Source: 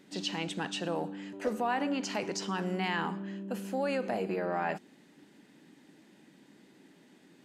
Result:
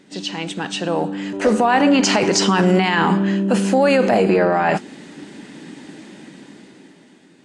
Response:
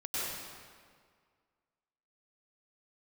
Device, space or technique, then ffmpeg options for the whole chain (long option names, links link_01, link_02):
low-bitrate web radio: -af "dynaudnorm=framelen=290:gausssize=9:maxgain=13.5dB,alimiter=limit=-14.5dB:level=0:latency=1:release=17,volume=8dB" -ar 22050 -c:a aac -b:a 48k